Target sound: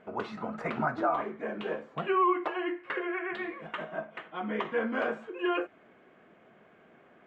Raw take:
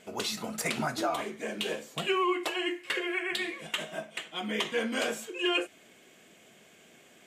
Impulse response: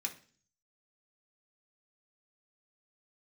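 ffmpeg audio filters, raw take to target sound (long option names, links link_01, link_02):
-af "lowpass=frequency=1300:width_type=q:width=1.6"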